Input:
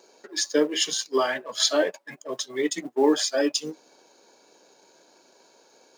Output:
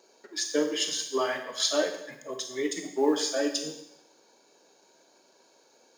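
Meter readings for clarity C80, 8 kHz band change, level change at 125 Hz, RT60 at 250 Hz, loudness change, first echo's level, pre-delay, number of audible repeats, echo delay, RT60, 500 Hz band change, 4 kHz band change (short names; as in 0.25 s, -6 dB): 11.0 dB, -3.5 dB, -3.5 dB, 0.85 s, -4.0 dB, none, 19 ms, none, none, 0.90 s, -4.0 dB, -4.0 dB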